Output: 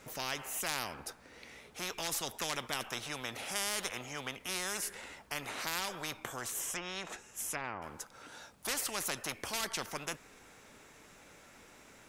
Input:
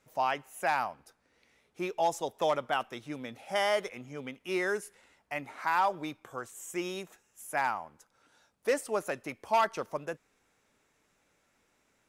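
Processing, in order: 6.59–7.82 s: low-pass that closes with the level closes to 1.1 kHz, closed at -28.5 dBFS; spectrum-flattening compressor 4:1; trim -1.5 dB

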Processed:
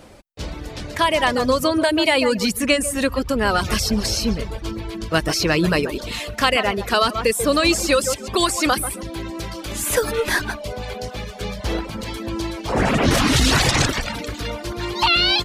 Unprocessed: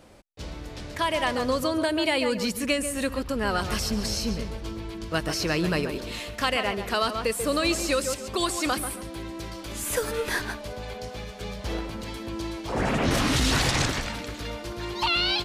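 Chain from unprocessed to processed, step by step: reverb removal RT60 0.6 s; trim +8 dB

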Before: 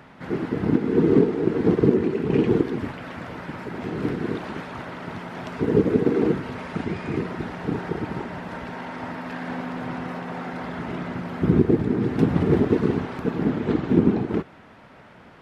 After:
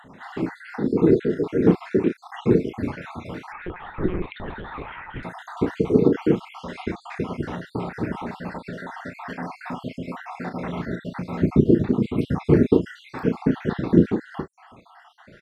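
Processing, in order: random holes in the spectrogram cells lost 62%; doubling 34 ms -8.5 dB; 3.52–5.23 s: monotone LPC vocoder at 8 kHz 180 Hz; trim +3 dB

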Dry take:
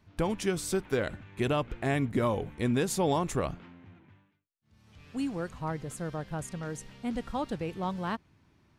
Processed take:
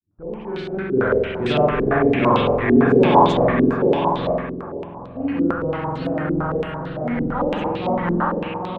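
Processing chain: fade-in on the opening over 1.10 s; on a send: feedback delay 805 ms, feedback 22%, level -4 dB; on the sum: spring tank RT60 1.5 s, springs 46 ms, chirp 40 ms, DRR -6.5 dB; level-controlled noise filter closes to 490 Hz, open at -21 dBFS; 6.05–6.72 s: careless resampling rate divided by 4×, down filtered, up hold; step-sequenced low-pass 8.9 Hz 330–3900 Hz; trim +1.5 dB

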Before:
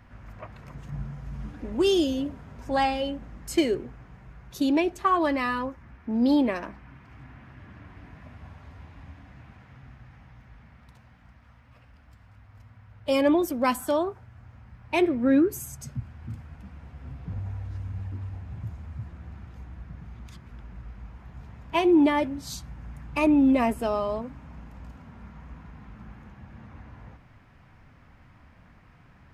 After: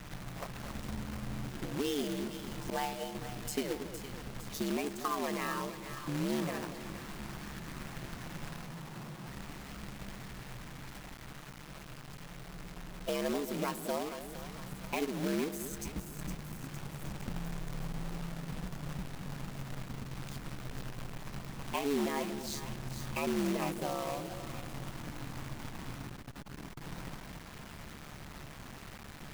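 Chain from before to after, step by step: 2.70–3.15 s: expander -22 dBFS; compression 2.5:1, threshold -45 dBFS, peak gain reduction 19 dB; ring modulator 72 Hz; 8.66–9.27 s: elliptic band-pass 130–1300 Hz; two-band feedback delay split 900 Hz, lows 232 ms, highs 460 ms, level -10 dB; companded quantiser 4-bit; 26.07–26.82 s: transformer saturation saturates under 140 Hz; trim +6.5 dB

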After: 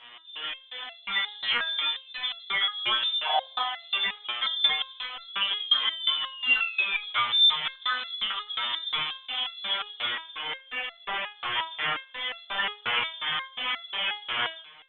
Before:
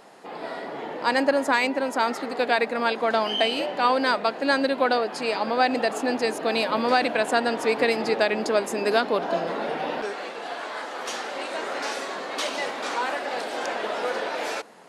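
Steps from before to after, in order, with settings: in parallel at -7.5 dB: one-sided clip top -22 dBFS; on the sum: LFO low-pass square 2.8 Hz 250–3000 Hz; painted sound rise, 5.60–7.01 s, 530–1500 Hz -14 dBFS; frequency inversion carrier 3.8 kHz; on a send: feedback echo behind a band-pass 82 ms, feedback 42%, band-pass 960 Hz, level -19 dB; on the sum: peak limiter -12 dBFS, peak gain reduction 10 dB; peaking EQ 1.3 kHz +7.5 dB 2.6 oct; resonator arpeggio 5.6 Hz 120–680 Hz; trim +3 dB

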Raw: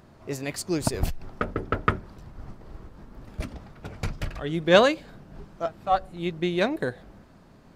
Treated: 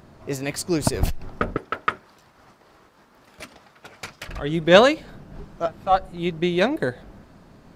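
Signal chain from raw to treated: 1.57–4.29 s: high-pass 1.2 kHz 6 dB/octave; trim +4 dB

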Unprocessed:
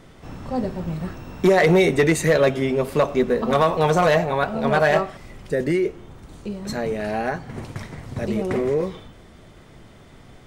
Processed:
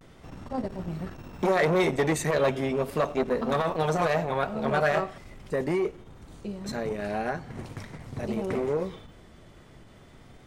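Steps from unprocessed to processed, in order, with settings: vibrato 0.39 Hz 42 cents; transformer saturation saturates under 460 Hz; trim -4.5 dB

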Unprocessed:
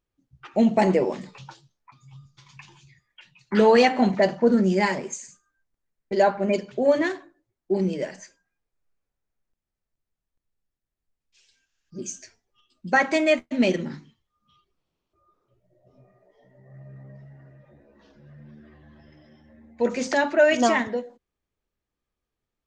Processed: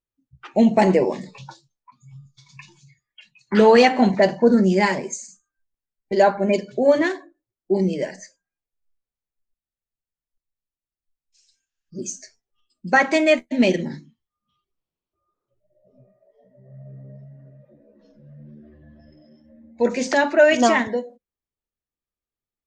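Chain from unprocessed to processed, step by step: spectral noise reduction 14 dB; trim +3.5 dB

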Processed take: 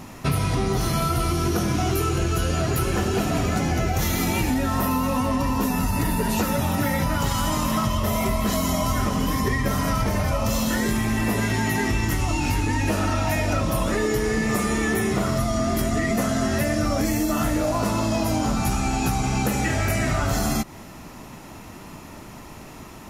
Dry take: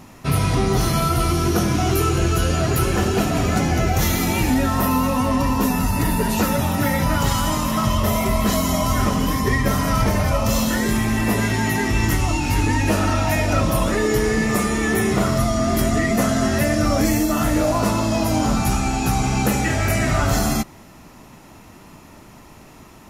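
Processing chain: compression, threshold -23 dBFS, peak gain reduction 9 dB; trim +3.5 dB

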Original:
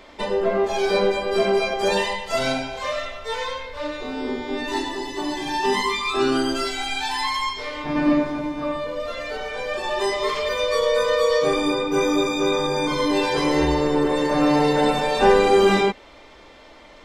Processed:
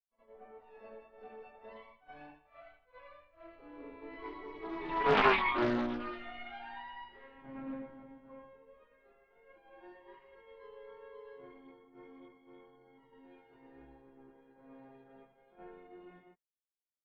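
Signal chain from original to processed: Doppler pass-by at 5.29 s, 36 m/s, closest 5.2 m; expander -50 dBFS; low-pass 2.5 kHz 24 dB/octave; pre-echo 71 ms -15.5 dB; loudspeaker Doppler distortion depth 0.54 ms; trim -1 dB

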